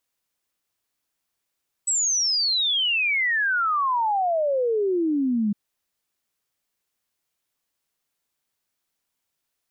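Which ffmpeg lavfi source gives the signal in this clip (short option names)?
-f lavfi -i "aevalsrc='0.106*clip(min(t,3.66-t)/0.01,0,1)*sin(2*PI*8000*3.66/log(200/8000)*(exp(log(200/8000)*t/3.66)-1))':d=3.66:s=44100"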